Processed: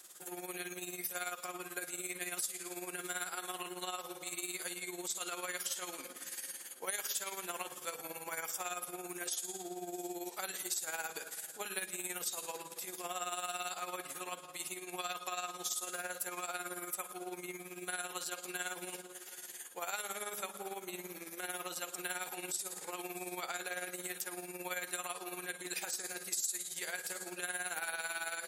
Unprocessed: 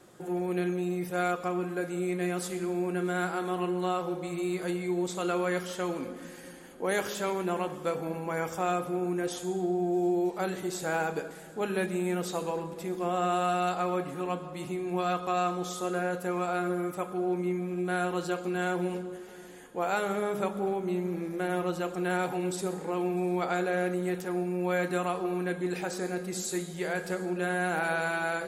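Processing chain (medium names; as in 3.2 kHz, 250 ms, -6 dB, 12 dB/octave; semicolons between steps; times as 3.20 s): differentiator; compression 3:1, threshold -47 dBFS, peak gain reduction 11 dB; tremolo 18 Hz, depth 65%; trim +13 dB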